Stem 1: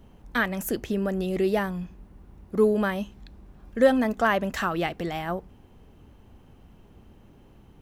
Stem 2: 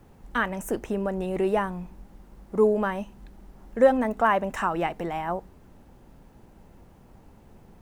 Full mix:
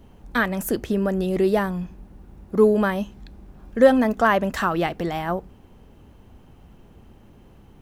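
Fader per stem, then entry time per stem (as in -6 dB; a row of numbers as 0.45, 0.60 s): +2.5, -7.0 dB; 0.00, 0.00 s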